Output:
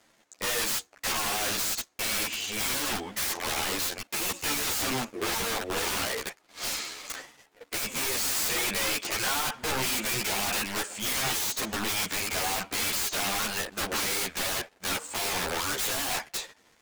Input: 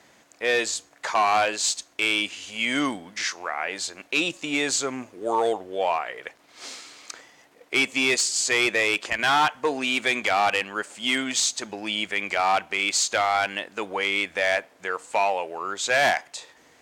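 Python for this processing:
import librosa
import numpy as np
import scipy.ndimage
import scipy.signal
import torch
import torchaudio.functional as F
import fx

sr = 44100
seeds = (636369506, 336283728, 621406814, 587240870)

y = fx.leveller(x, sr, passes=3)
y = fx.rider(y, sr, range_db=4, speed_s=2.0)
y = (np.mod(10.0 ** (18.0 / 20.0) * y + 1.0, 2.0) - 1.0) / 10.0 ** (18.0 / 20.0)
y = fx.ensemble(y, sr)
y = F.gain(torch.from_numpy(y), -3.0).numpy()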